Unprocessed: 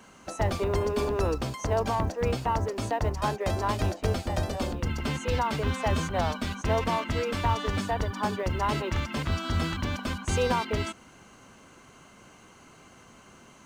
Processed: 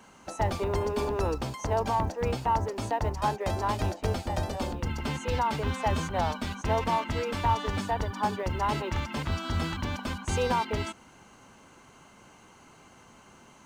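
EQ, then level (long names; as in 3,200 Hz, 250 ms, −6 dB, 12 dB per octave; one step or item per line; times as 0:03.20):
parametric band 870 Hz +7 dB 0.21 octaves
−2.0 dB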